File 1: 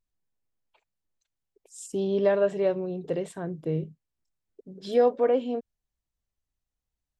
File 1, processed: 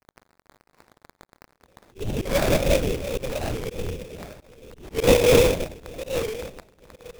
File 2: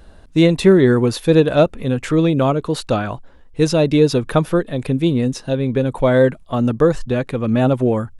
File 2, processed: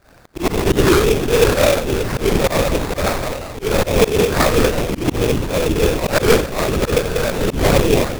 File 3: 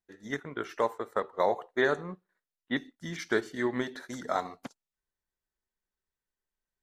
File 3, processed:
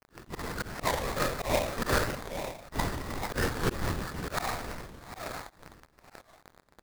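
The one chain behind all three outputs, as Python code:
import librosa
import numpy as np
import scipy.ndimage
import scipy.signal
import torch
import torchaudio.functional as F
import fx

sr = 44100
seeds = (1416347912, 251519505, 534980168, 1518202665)

y = fx.reverse_delay_fb(x, sr, ms=475, feedback_pct=42, wet_db=-11.5)
y = scipy.signal.sosfilt(scipy.signal.butter(2, 140.0, 'highpass', fs=sr, output='sos'), y)
y = fx.hum_notches(y, sr, base_hz=60, count=3)
y = fx.rev_schroeder(y, sr, rt60_s=0.58, comb_ms=31, drr_db=-8.5)
y = fx.lpc_vocoder(y, sr, seeds[0], excitation='whisper', order=8)
y = fx.dmg_crackle(y, sr, seeds[1], per_s=160.0, level_db=-31.0)
y = fx.high_shelf(y, sr, hz=2100.0, db=10.5)
y = fx.rider(y, sr, range_db=4, speed_s=2.0)
y = fx.sample_hold(y, sr, seeds[2], rate_hz=3000.0, jitter_pct=20)
y = fx.auto_swell(y, sr, attack_ms=129.0)
y = fx.record_warp(y, sr, rpm=45.0, depth_cents=160.0)
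y = F.gain(torch.from_numpy(y), -7.5).numpy()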